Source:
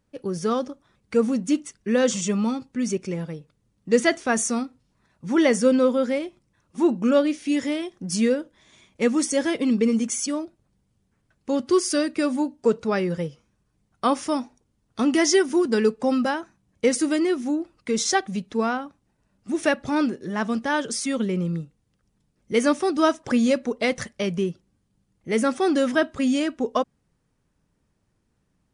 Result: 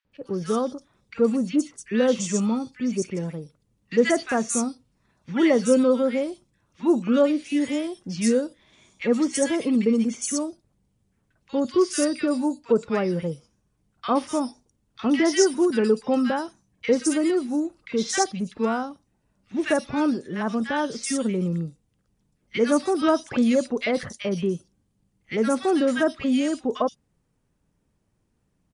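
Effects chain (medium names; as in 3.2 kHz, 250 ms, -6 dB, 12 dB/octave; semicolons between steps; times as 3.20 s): three bands offset in time mids, lows, highs 50/120 ms, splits 1.5/4.5 kHz; 23.08–24.21 s: gate -35 dBFS, range -7 dB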